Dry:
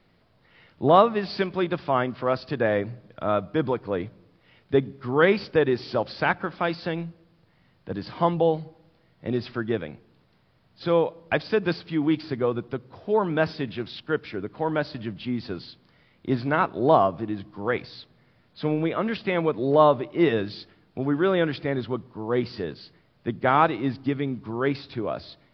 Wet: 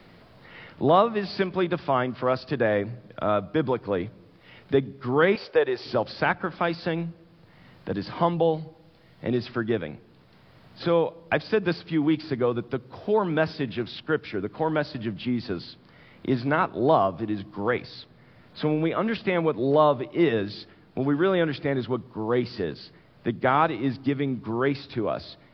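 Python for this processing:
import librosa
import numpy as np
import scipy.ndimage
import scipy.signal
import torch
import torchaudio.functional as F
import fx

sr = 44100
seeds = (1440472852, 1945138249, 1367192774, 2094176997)

y = fx.low_shelf_res(x, sr, hz=330.0, db=-14.0, q=1.5, at=(5.35, 5.85))
y = fx.band_squash(y, sr, depth_pct=40)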